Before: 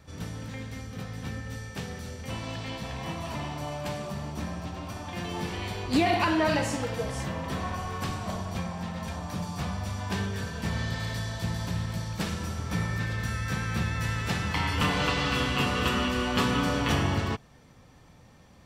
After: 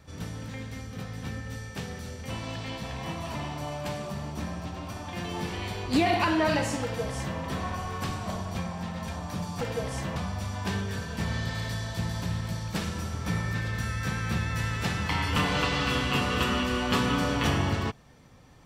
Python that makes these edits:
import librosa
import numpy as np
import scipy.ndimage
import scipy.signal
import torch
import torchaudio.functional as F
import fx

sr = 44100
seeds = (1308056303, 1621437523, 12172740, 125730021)

y = fx.edit(x, sr, fx.duplicate(start_s=6.83, length_s=0.55, to_s=9.61), tone=tone)